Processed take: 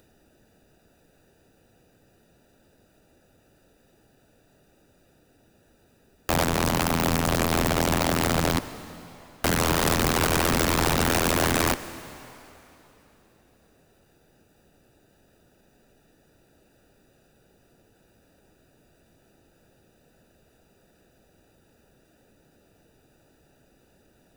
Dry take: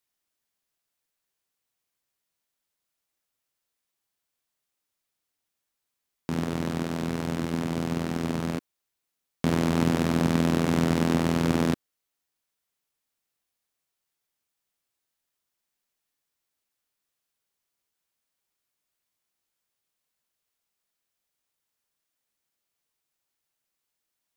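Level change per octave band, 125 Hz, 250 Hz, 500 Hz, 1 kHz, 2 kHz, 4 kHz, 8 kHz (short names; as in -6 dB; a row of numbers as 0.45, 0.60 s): +0.5, -2.0, +4.0, +8.0, +9.0, +10.0, +13.0 dB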